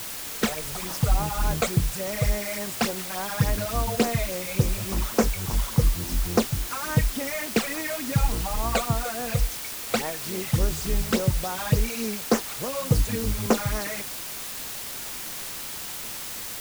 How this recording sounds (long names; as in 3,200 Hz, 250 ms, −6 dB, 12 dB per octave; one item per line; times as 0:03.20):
phaser sweep stages 12, 3.5 Hz, lowest notch 280–3,900 Hz
a quantiser's noise floor 6 bits, dither triangular